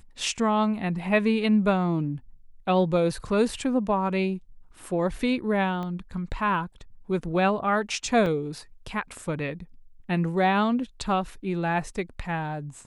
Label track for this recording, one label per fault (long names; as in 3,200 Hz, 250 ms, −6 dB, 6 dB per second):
5.830000	5.830000	click −23 dBFS
8.260000	8.260000	drop-out 2.9 ms